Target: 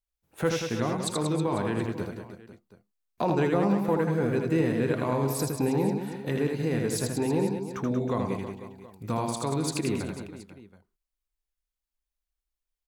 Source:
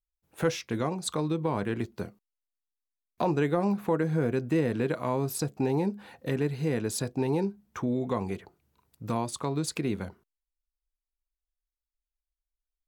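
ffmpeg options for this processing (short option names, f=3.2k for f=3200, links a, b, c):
-af "aecho=1:1:80|184|319.2|495|723.4:0.631|0.398|0.251|0.158|0.1"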